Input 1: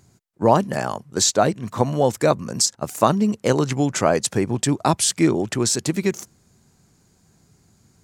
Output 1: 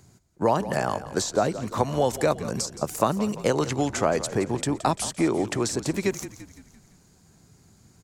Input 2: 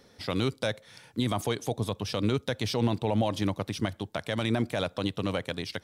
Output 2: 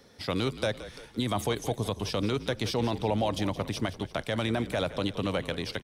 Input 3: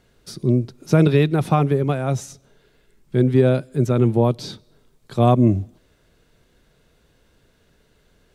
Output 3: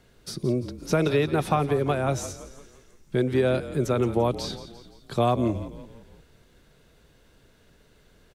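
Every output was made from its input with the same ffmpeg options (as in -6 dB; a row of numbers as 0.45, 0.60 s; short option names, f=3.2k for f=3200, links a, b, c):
-filter_complex "[0:a]acrossover=split=400|1200[a][b][c];[a]acompressor=threshold=-29dB:ratio=4[d];[b]acompressor=threshold=-23dB:ratio=4[e];[c]acompressor=threshold=-32dB:ratio=4[f];[d][e][f]amix=inputs=3:normalize=0,asplit=6[g][h][i][j][k][l];[h]adelay=171,afreqshift=-40,volume=-14dB[m];[i]adelay=342,afreqshift=-80,volume=-19.8dB[n];[j]adelay=513,afreqshift=-120,volume=-25.7dB[o];[k]adelay=684,afreqshift=-160,volume=-31.5dB[p];[l]adelay=855,afreqshift=-200,volume=-37.4dB[q];[g][m][n][o][p][q]amix=inputs=6:normalize=0,volume=1dB"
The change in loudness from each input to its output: -5.5, -0.5, -6.5 LU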